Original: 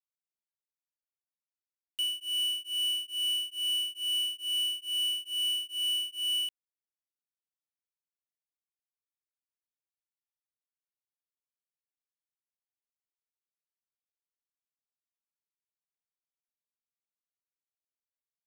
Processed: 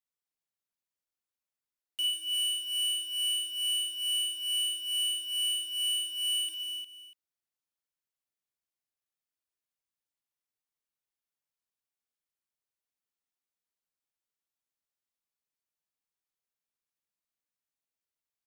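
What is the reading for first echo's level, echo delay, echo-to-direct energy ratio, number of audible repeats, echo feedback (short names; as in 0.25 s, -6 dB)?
-6.5 dB, 52 ms, -1.5 dB, 5, no steady repeat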